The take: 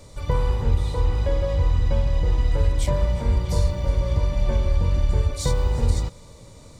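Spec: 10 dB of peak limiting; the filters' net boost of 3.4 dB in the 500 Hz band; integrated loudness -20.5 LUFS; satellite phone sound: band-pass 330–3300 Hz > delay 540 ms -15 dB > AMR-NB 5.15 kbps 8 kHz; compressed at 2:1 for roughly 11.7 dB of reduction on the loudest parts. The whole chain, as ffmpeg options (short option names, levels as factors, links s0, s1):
-af "equalizer=f=500:t=o:g=4.5,acompressor=threshold=0.0141:ratio=2,alimiter=level_in=1.58:limit=0.0631:level=0:latency=1,volume=0.631,highpass=330,lowpass=3300,aecho=1:1:540:0.178,volume=21.1" -ar 8000 -c:a libopencore_amrnb -b:a 5150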